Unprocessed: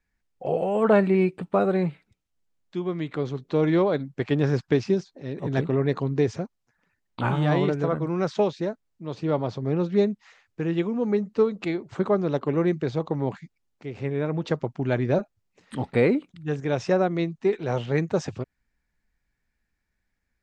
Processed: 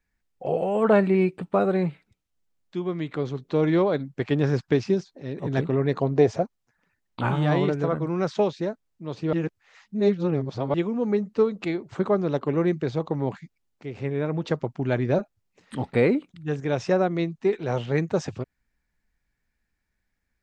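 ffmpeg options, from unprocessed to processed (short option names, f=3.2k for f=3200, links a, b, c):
-filter_complex "[0:a]asettb=1/sr,asplit=3[a][b][c];[a]atrim=end=6.014[d];[b]atrim=start=6.01:end=6.43,asetpts=PTS-STARTPTS,afade=t=in:d=0.004:c=qsin,afade=t=out:st=0.416:d=0.004:c=qsin,equalizer=f=650:t=o:w=0.82:g=14[e];[c]atrim=start=6.426[f];[d][e]acrossfade=d=0.004:c1=hsin:c2=qsin[g];[g][f]acrossfade=d=0.004:c1=qsin:c2=hsin,asplit=3[h][i][j];[h]atrim=end=9.332[k];[i]atrim=start=9.328:end=10.742,asetpts=PTS-STARTPTS,areverse[l];[j]atrim=start=10.738[m];[k][l]acrossfade=d=0.004:c1=hsin:c2=hsin[n];[n][m]acrossfade=d=0.004:c1=hsin:c2=hsin"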